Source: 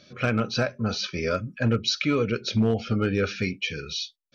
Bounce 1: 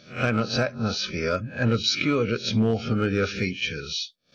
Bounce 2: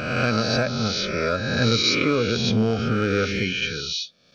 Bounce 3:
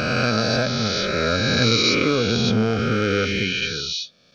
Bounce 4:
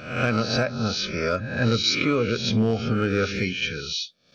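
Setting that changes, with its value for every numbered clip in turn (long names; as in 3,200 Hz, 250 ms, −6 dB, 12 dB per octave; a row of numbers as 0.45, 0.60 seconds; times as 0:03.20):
peak hold with a rise ahead of every peak, rising 60 dB in: 0.31, 1.42, 3.16, 0.66 seconds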